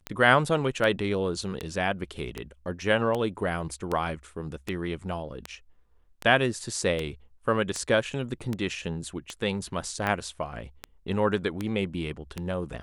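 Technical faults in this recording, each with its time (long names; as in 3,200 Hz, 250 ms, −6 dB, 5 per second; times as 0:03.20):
scratch tick 78 rpm −16 dBFS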